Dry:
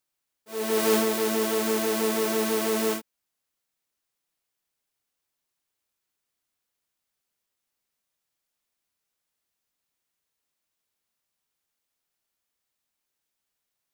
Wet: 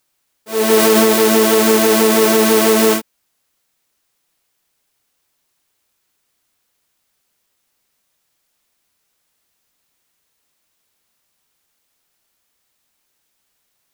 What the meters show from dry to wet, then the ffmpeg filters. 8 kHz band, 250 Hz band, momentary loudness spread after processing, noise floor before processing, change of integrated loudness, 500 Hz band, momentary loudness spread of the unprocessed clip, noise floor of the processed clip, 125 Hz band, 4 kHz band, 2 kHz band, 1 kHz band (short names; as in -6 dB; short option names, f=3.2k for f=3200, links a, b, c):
+13.0 dB, +13.0 dB, 6 LU, -83 dBFS, +13.0 dB, +13.0 dB, 7 LU, -69 dBFS, +13.0 dB, +13.0 dB, +13.0 dB, +13.0 dB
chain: -af "alimiter=level_in=15dB:limit=-1dB:release=50:level=0:latency=1,volume=-1dB"